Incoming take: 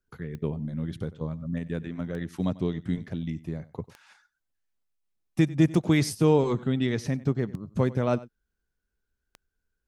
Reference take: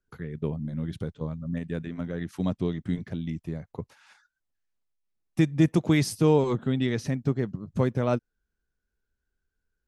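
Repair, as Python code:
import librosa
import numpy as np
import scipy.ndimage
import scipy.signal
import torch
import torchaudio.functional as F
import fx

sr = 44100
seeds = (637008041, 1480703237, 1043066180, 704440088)

y = fx.fix_declick_ar(x, sr, threshold=10.0)
y = fx.fix_echo_inverse(y, sr, delay_ms=95, level_db=-19.5)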